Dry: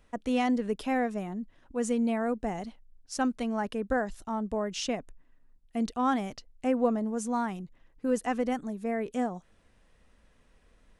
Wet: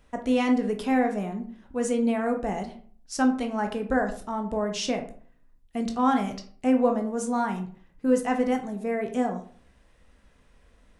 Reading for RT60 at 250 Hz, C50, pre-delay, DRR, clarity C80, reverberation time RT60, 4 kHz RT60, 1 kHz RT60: 0.55 s, 10.5 dB, 13 ms, 4.5 dB, 14.5 dB, 0.45 s, 0.30 s, 0.45 s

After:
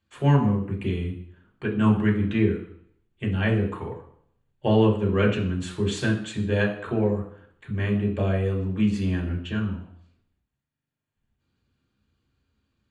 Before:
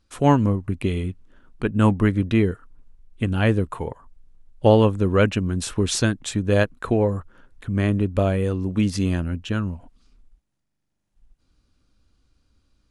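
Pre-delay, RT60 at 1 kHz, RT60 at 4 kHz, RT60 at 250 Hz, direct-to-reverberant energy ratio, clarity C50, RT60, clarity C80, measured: 3 ms, 0.60 s, 0.65 s, 0.60 s, -3.5 dB, 8.5 dB, 0.60 s, 11.5 dB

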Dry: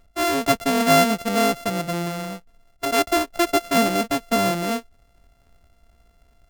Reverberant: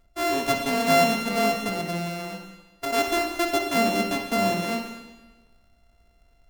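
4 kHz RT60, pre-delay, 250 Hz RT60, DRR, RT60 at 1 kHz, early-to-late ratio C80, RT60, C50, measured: 1.2 s, 30 ms, 1.2 s, 3.0 dB, 1.2 s, 6.5 dB, 1.2 s, 4.5 dB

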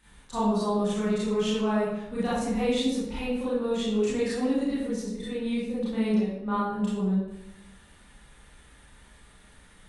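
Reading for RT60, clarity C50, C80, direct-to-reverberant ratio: 0.90 s, -1.0 dB, 2.5 dB, -10.0 dB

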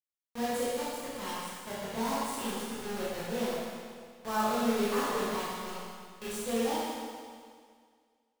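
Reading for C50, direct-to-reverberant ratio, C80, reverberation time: -3.5 dB, -9.0 dB, -1.0 dB, 2.0 s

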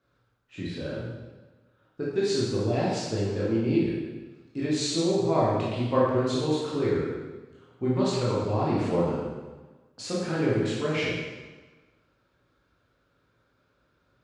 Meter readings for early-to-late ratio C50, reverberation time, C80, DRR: -1.5 dB, 1.3 s, 1.5 dB, -7.5 dB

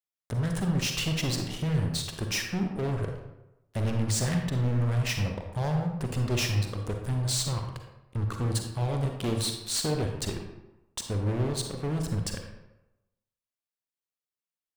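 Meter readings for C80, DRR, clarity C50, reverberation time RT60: 7.0 dB, 3.5 dB, 4.5 dB, 0.95 s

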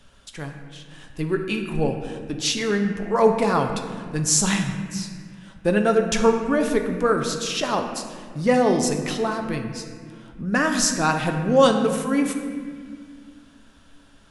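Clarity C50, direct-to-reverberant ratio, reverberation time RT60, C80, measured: 6.0 dB, 4.0 dB, 1.9 s, 7.5 dB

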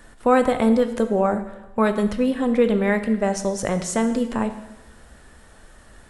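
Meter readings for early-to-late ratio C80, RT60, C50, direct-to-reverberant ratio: 12.5 dB, 1.0 s, 10.5 dB, 8.0 dB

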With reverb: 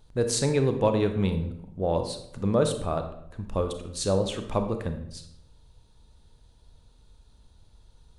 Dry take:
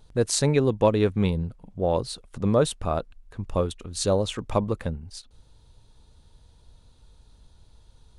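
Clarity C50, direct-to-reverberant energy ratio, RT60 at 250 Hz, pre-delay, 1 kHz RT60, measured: 8.5 dB, 6.5 dB, 0.90 s, 28 ms, 0.70 s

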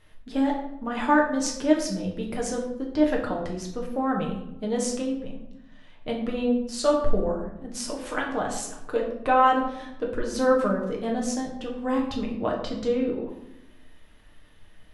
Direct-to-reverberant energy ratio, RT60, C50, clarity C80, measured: -1.5 dB, 0.85 s, 6.0 dB, 8.5 dB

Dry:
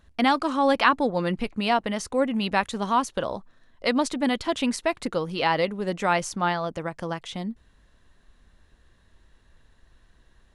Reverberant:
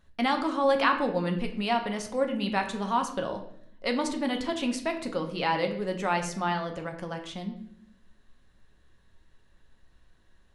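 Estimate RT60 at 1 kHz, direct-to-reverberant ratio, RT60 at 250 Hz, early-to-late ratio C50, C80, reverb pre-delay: 0.55 s, 4.0 dB, 1.0 s, 9.5 dB, 12.0 dB, 5 ms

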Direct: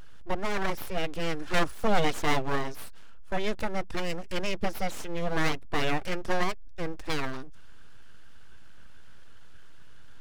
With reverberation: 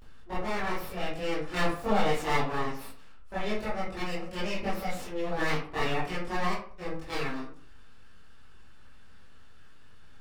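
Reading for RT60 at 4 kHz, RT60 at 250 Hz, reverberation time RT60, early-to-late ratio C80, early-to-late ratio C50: 0.30 s, 0.50 s, 0.50 s, 9.0 dB, 3.5 dB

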